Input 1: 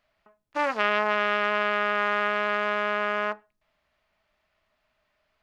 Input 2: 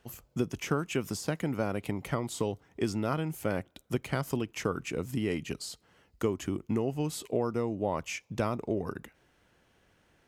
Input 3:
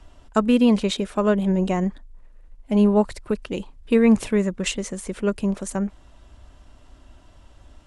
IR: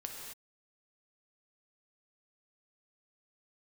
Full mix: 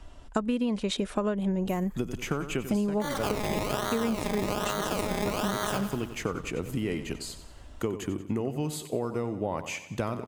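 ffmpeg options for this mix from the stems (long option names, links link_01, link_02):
-filter_complex "[0:a]dynaudnorm=framelen=300:gausssize=9:maxgain=7dB,acrusher=samples=24:mix=1:aa=0.000001:lfo=1:lforange=14.4:lforate=1.2,adelay=2450,volume=-0.5dB,asplit=2[link_01][link_02];[link_02]volume=-12dB[link_03];[1:a]bandreject=frequency=5500:width=7.9,adelay=1600,volume=1.5dB,asplit=2[link_04][link_05];[link_05]volume=-12.5dB[link_06];[2:a]volume=0.5dB[link_07];[link_03][link_06]amix=inputs=2:normalize=0,aecho=0:1:92|184|276|368|460|552|644:1|0.49|0.24|0.118|0.0576|0.0282|0.0138[link_08];[link_01][link_04][link_07][link_08]amix=inputs=4:normalize=0,acompressor=threshold=-24dB:ratio=16"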